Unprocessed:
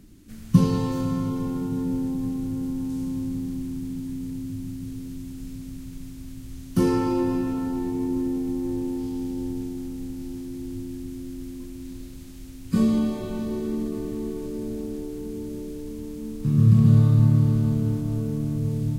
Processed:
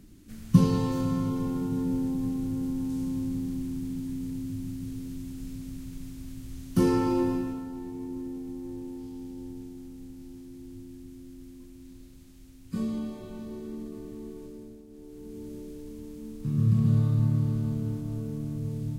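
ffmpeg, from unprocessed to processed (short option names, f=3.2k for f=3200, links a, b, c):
-af "volume=10.5dB,afade=t=out:st=7.22:d=0.43:silence=0.375837,afade=t=out:st=14.43:d=0.43:silence=0.354813,afade=t=in:st=14.86:d=0.61:silence=0.237137"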